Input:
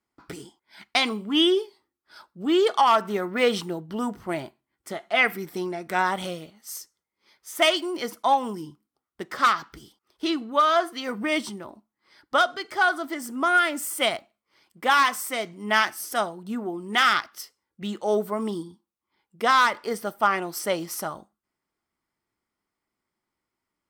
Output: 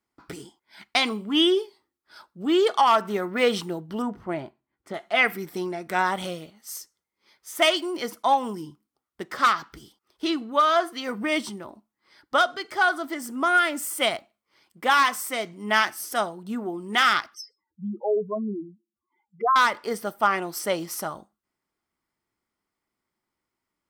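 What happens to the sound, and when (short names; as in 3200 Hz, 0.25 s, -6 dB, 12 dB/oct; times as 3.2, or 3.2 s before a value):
4.02–4.94 LPF 1700 Hz 6 dB/oct
17.34–19.56 spectral contrast raised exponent 3.6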